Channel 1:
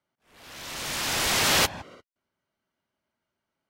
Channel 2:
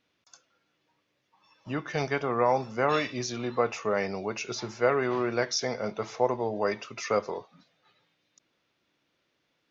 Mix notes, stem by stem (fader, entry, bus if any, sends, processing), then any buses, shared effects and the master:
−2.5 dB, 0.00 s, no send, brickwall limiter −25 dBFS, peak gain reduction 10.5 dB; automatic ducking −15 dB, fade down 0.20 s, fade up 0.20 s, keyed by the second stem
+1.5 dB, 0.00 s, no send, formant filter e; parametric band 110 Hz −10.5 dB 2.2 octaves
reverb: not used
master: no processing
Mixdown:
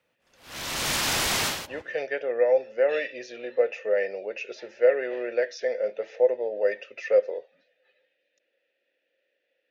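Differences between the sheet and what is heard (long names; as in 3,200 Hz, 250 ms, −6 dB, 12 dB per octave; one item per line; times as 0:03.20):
stem 1 −2.5 dB → +5.5 dB
stem 2 +1.5 dB → +11.5 dB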